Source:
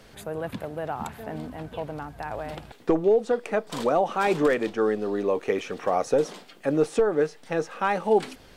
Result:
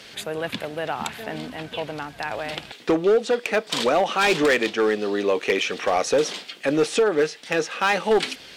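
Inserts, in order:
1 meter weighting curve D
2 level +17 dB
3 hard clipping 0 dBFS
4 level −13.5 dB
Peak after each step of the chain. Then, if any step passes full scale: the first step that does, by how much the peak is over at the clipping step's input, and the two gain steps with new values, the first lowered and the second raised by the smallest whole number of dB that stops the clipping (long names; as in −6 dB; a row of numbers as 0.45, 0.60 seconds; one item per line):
−8.0, +9.0, 0.0, −13.5 dBFS
step 2, 9.0 dB
step 2 +8 dB, step 4 −4.5 dB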